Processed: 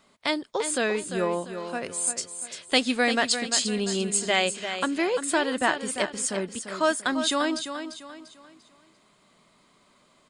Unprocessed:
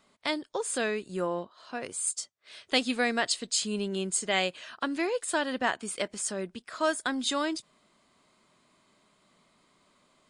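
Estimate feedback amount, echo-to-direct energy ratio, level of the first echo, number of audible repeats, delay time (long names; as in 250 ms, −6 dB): 36%, −8.5 dB, −9.0 dB, 3, 345 ms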